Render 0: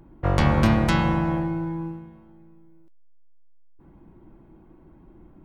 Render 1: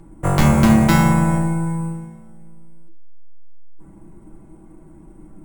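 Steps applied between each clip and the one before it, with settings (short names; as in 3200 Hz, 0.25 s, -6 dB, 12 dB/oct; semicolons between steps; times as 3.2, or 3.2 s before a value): sample-and-hold 5×; reverb RT60 0.30 s, pre-delay 5 ms, DRR 4 dB; gain +3.5 dB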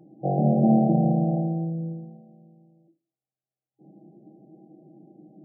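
tilt +2.5 dB/oct; FFT band-pass 120–810 Hz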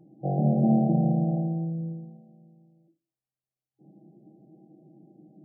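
low shelf 130 Hz +10.5 dB; gain -5.5 dB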